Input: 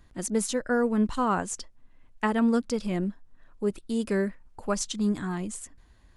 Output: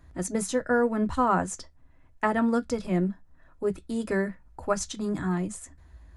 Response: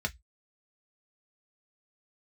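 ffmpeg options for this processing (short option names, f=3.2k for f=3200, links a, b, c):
-filter_complex "[0:a]asplit=2[a][b];[1:a]atrim=start_sample=2205,lowshelf=f=130:g=5.5[c];[b][c]afir=irnorm=-1:irlink=0,volume=-8.5dB[d];[a][d]amix=inputs=2:normalize=0"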